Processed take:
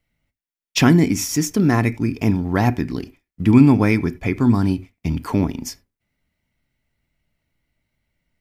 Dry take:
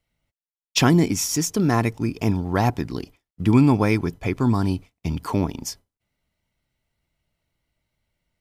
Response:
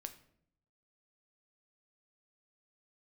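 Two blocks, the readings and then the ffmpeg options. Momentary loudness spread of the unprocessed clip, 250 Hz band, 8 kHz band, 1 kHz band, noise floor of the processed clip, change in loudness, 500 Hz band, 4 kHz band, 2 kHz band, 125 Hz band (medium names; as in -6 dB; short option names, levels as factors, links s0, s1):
14 LU, +4.5 dB, -0.5 dB, 0.0 dB, under -85 dBFS, +3.5 dB, +1.5 dB, 0.0 dB, +3.5 dB, +3.0 dB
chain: -filter_complex "[0:a]asplit=2[s0][s1];[s1]equalizer=f=125:t=o:w=1:g=-3,equalizer=f=250:t=o:w=1:g=6,equalizer=f=500:t=o:w=1:g=-5,equalizer=f=1000:t=o:w=1:g=-11,equalizer=f=2000:t=o:w=1:g=8,equalizer=f=4000:t=o:w=1:g=-8,equalizer=f=8000:t=o:w=1:g=-12[s2];[1:a]atrim=start_sample=2205,atrim=end_sample=4410[s3];[s2][s3]afir=irnorm=-1:irlink=0,volume=1.58[s4];[s0][s4]amix=inputs=2:normalize=0,volume=0.75"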